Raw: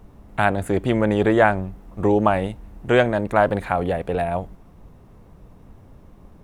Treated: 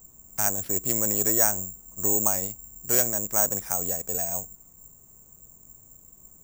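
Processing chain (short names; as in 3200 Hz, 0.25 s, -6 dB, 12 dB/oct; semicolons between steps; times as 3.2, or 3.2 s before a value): careless resampling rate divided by 6×, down none, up zero stuff; gain -13.5 dB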